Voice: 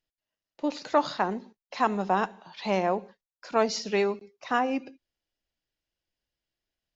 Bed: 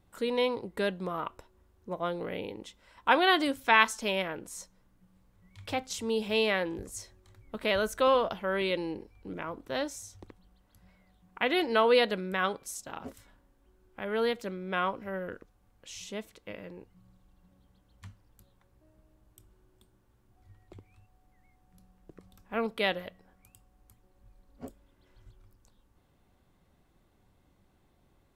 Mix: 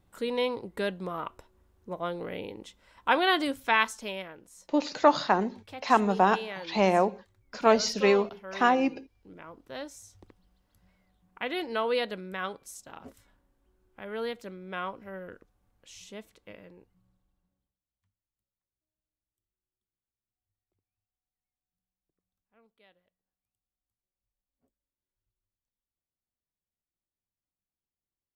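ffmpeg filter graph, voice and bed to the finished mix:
-filter_complex "[0:a]adelay=4100,volume=3dB[a];[1:a]volume=5dB,afade=t=out:st=3.57:d=0.8:silence=0.316228,afade=t=in:st=9.25:d=0.87:silence=0.530884,afade=t=out:st=16.48:d=1.29:silence=0.0375837[b];[a][b]amix=inputs=2:normalize=0"

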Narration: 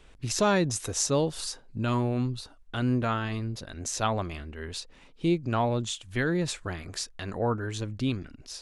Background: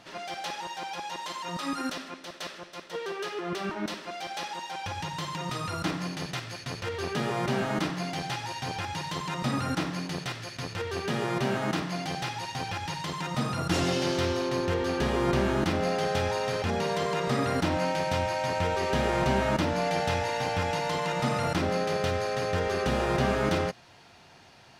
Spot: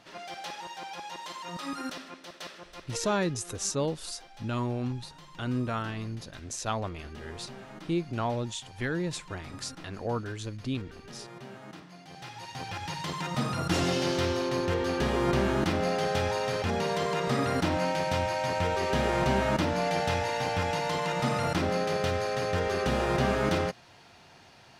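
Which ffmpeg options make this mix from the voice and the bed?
-filter_complex "[0:a]adelay=2650,volume=-4dB[a];[1:a]volume=12.5dB,afade=t=out:st=2.87:d=0.51:silence=0.223872,afade=t=in:st=12.06:d=1.01:silence=0.149624[b];[a][b]amix=inputs=2:normalize=0"

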